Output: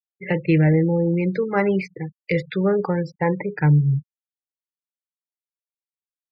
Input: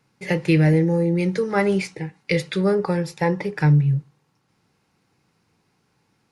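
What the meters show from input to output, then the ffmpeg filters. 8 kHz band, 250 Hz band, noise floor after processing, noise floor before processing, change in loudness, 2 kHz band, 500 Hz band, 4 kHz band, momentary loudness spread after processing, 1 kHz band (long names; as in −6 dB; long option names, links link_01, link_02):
below −15 dB, 0.0 dB, below −85 dBFS, −68 dBFS, 0.0 dB, −1.0 dB, 0.0 dB, can't be measured, 8 LU, 0.0 dB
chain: -filter_complex "[0:a]afftfilt=real='re*gte(hypot(re,im),0.0355)':imag='im*gte(hypot(re,im),0.0355)':win_size=1024:overlap=0.75,acrossover=split=2900[link_01][link_02];[link_02]acompressor=threshold=-44dB:ratio=4:attack=1:release=60[link_03];[link_01][link_03]amix=inputs=2:normalize=0"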